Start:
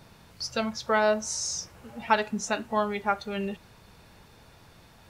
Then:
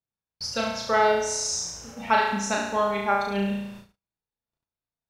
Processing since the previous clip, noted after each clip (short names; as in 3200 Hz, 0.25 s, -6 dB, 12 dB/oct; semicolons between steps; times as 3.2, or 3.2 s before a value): flutter echo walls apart 6 m, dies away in 0.88 s; gate -43 dBFS, range -46 dB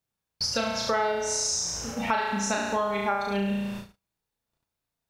compressor 4:1, threshold -33 dBFS, peak gain reduction 14.5 dB; gain +7.5 dB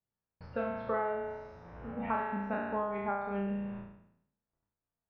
spectral trails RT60 0.74 s; Bessel low-pass 1400 Hz, order 6; gain -7 dB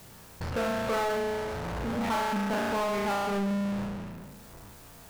power-law curve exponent 0.35; gain -2.5 dB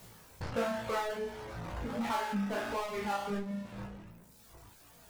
reverb removal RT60 1.7 s; chorus 1.4 Hz, delay 16.5 ms, depth 3.9 ms